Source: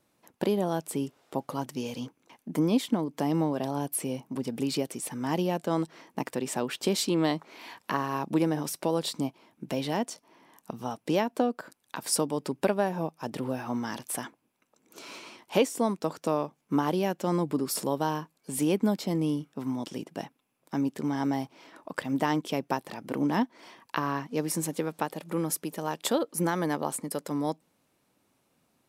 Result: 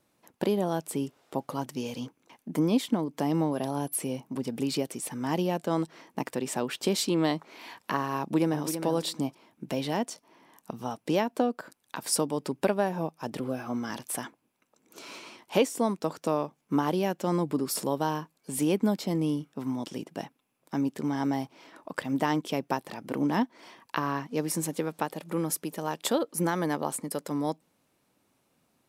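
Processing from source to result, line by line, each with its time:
0:03.51–0:04.07: steady tone 11,000 Hz −54 dBFS
0:08.19–0:08.68: delay throw 330 ms, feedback 15%, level −9 dB
0:13.39–0:13.90: notch comb filter 910 Hz

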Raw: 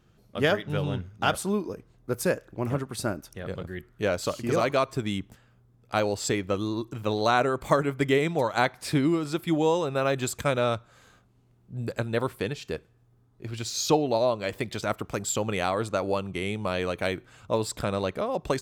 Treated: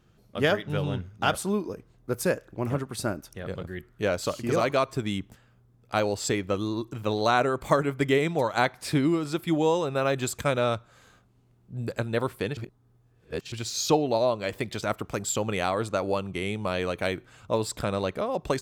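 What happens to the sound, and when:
0:12.57–0:13.52: reverse

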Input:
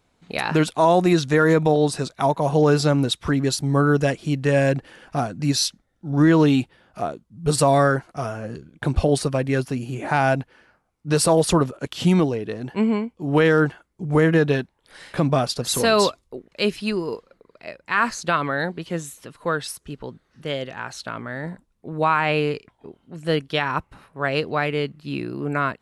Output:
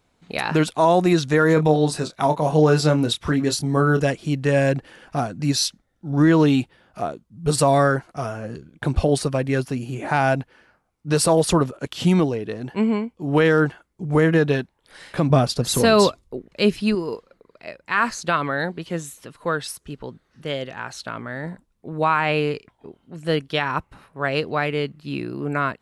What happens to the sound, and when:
0:01.54–0:04.01: double-tracking delay 26 ms −8 dB
0:15.30–0:16.95: low-shelf EQ 360 Hz +7.5 dB

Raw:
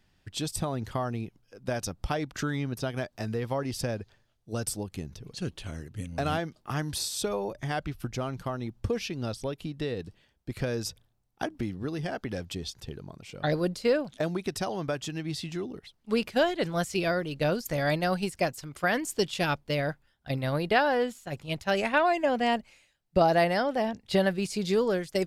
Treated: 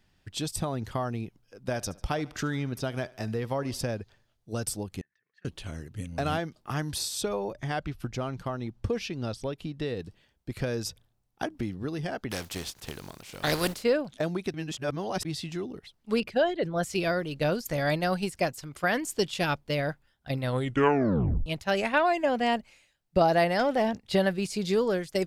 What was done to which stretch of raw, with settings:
0:01.60–0:03.83: feedback echo with a high-pass in the loop 73 ms, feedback 51%, high-pass 190 Hz, level −21 dB
0:05.01–0:05.45: resonant band-pass 1,800 Hz, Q 19
0:07.21–0:09.86: high-shelf EQ 10,000 Hz −9 dB
0:12.30–0:13.82: compressing power law on the bin magnitudes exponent 0.51
0:14.54–0:15.25: reverse
0:16.20–0:16.83: spectral envelope exaggerated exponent 1.5
0:20.43: tape stop 1.03 s
0:23.59–0:24.02: leveller curve on the samples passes 1

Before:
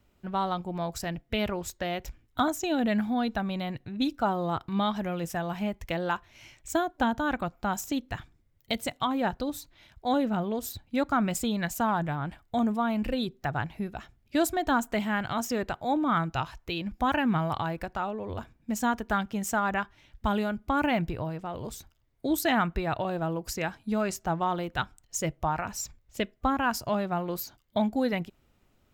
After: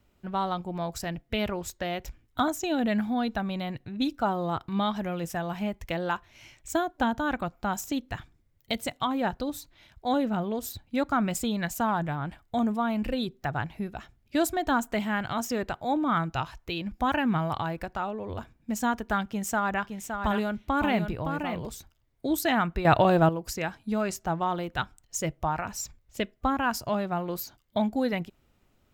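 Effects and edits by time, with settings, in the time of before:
0:19.26–0:21.66: single-tap delay 565 ms −6.5 dB
0:22.85–0:23.29: clip gain +10 dB

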